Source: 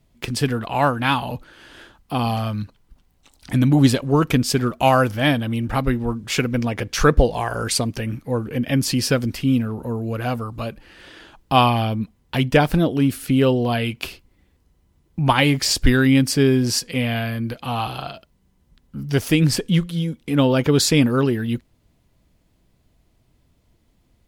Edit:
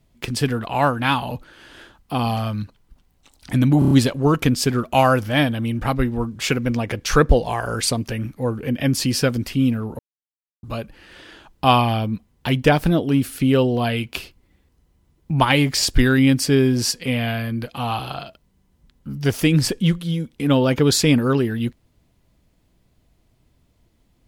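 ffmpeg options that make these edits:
-filter_complex "[0:a]asplit=7[a][b][c][d][e][f][g];[a]atrim=end=3.822[h];[b]atrim=start=3.788:end=3.822[i];[c]atrim=start=3.788:end=3.822[j];[d]atrim=start=3.788:end=3.822[k];[e]atrim=start=3.788:end=9.87,asetpts=PTS-STARTPTS,afade=t=out:st=6.078:d=0.004:c=hsin[l];[f]atrim=start=9.87:end=10.51,asetpts=PTS-STARTPTS,volume=0[m];[g]atrim=start=10.51,asetpts=PTS-STARTPTS,afade=t=in:d=0.004:c=hsin[n];[h][i]acrossfade=d=0.004:c1=hsin:c2=hsin[o];[o][j]acrossfade=d=0.004:c1=hsin:c2=hsin[p];[p][k]acrossfade=d=0.004:c1=hsin:c2=hsin[q];[l][m][n]concat=n=3:v=0:a=1[r];[q][r]acrossfade=d=0.004:c1=hsin:c2=hsin"

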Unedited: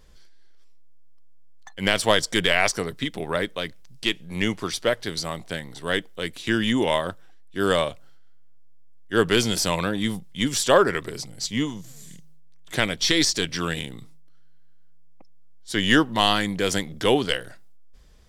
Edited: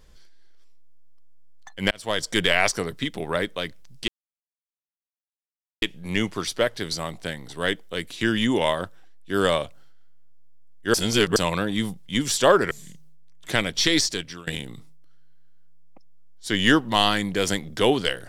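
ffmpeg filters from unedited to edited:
-filter_complex "[0:a]asplit=7[a][b][c][d][e][f][g];[a]atrim=end=1.91,asetpts=PTS-STARTPTS,afade=t=out:st=1.906:d=0.004:c=hsin[h];[b]atrim=start=1.91:end=4.08,asetpts=PTS-STARTPTS,afade=t=in:d=0.47,afade=t=out:st=2.166:d=0.004:c=hsin,apad=pad_dur=1.74[i];[c]atrim=start=4.08:end=9.202,asetpts=PTS-STARTPTS,afade=t=in:d=0.004:c=hsin[j];[d]atrim=start=9.198:end=9.622,asetpts=PTS-STARTPTS,areverse[k];[e]atrim=start=9.618:end=10.972[l];[f]atrim=start=11.948:end=13.71,asetpts=PTS-STARTPTS,afade=t=out:st=1.252:d=0.51:silence=0.0707946[m];[g]atrim=start=13.71,asetpts=PTS-STARTPTS,afade=t=in:d=0.004:c=hsin:silence=0.0707946[n];[h][i][j]concat=n=3:v=0:a=1[o];[o][k]acrossfade=d=0.004:c1=hsin:c2=hsin[p];[p][l]acrossfade=d=0.004:c1=hsin:c2=hsin[q];[m][n]concat=n=2:v=0:a=1[r];[q][r]acrossfade=d=0.004:c1=hsin:c2=hsin"

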